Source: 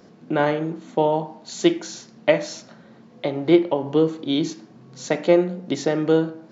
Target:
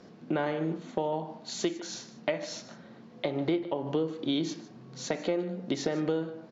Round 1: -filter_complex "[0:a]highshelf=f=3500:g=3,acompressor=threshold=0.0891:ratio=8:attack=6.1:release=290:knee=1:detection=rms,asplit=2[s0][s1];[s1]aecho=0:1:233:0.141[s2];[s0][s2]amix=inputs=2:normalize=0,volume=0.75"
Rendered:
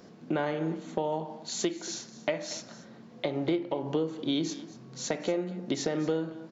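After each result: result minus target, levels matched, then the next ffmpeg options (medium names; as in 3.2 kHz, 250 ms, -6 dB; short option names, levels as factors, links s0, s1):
echo 82 ms late; 8 kHz band +4.0 dB
-filter_complex "[0:a]highshelf=f=3500:g=3,acompressor=threshold=0.0891:ratio=8:attack=6.1:release=290:knee=1:detection=rms,asplit=2[s0][s1];[s1]aecho=0:1:151:0.141[s2];[s0][s2]amix=inputs=2:normalize=0,volume=0.75"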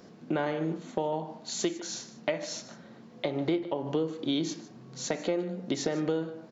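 8 kHz band +4.0 dB
-filter_complex "[0:a]highshelf=f=3500:g=3,acompressor=threshold=0.0891:ratio=8:attack=6.1:release=290:knee=1:detection=rms,lowpass=5800,asplit=2[s0][s1];[s1]aecho=0:1:151:0.141[s2];[s0][s2]amix=inputs=2:normalize=0,volume=0.75"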